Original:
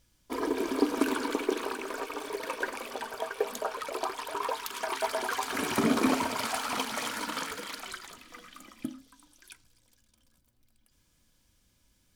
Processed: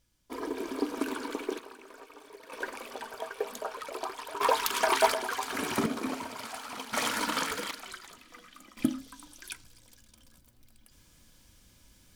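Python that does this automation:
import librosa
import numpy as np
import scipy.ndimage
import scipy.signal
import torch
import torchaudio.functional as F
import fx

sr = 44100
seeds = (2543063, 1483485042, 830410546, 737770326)

y = fx.gain(x, sr, db=fx.steps((0.0, -5.0), (1.59, -14.0), (2.52, -3.5), (4.41, 7.5), (5.14, -1.5), (5.86, -8.5), (6.93, 4.0), (7.71, -3.0), (8.77, 9.0)))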